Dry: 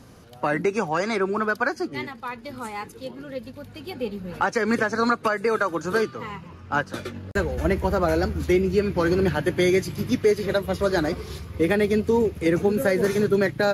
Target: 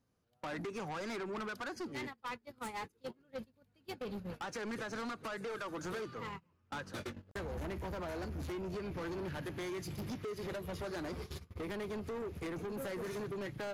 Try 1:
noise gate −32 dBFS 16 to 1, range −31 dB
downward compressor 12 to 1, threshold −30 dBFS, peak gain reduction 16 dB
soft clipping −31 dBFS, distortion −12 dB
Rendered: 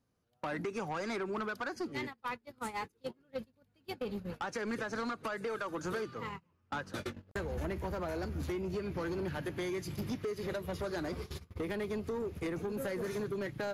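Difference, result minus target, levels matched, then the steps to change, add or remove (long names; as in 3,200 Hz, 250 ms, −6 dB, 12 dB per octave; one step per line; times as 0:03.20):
soft clipping: distortion −5 dB
change: soft clipping −37.5 dBFS, distortion −7 dB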